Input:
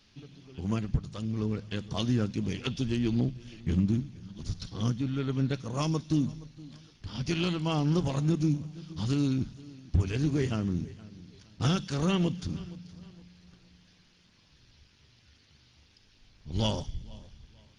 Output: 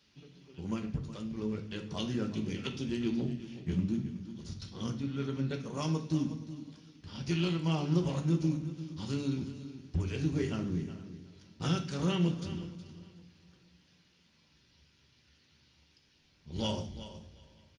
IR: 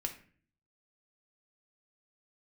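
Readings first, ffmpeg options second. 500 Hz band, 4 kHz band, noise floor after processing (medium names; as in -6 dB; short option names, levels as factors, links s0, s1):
-3.0 dB, -4.0 dB, -68 dBFS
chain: -filter_complex "[0:a]highpass=82,aecho=1:1:368|736:0.211|0.038[s0];[1:a]atrim=start_sample=2205[s1];[s0][s1]afir=irnorm=-1:irlink=0,volume=0.596"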